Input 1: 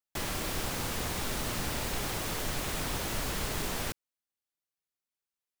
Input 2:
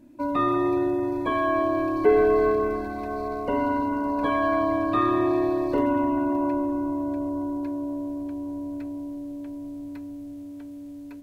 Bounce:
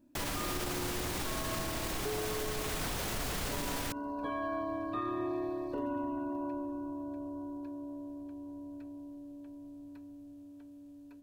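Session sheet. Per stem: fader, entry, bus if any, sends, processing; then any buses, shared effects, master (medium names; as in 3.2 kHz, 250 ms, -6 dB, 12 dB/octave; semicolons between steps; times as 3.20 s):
+3.0 dB, 0.00 s, no send, none
-12.5 dB, 0.00 s, no send, band-stop 2.1 kHz, Q 6.5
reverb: none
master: peak limiter -26.5 dBFS, peak gain reduction 9.5 dB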